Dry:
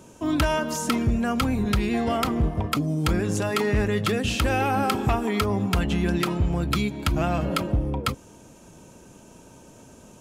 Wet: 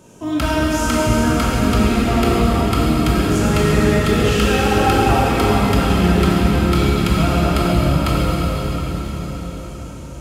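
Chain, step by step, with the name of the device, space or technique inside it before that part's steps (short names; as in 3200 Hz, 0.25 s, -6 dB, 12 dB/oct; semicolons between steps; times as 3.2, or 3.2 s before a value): cathedral (reverb RT60 5.8 s, pre-delay 14 ms, DRR -7 dB)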